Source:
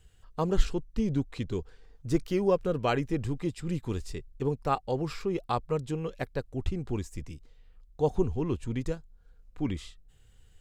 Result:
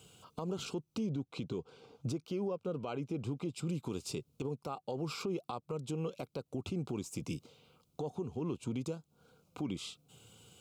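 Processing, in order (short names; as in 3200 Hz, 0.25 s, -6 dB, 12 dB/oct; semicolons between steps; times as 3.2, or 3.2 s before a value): HPF 130 Hz 24 dB/oct; compressor 8:1, threshold -41 dBFS, peak gain reduction 20.5 dB; Butterworth band-stop 1800 Hz, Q 2.2; limiter -38 dBFS, peak gain reduction 10.5 dB; 1.06–3.54 high shelf 6800 Hz -11 dB; gain +10 dB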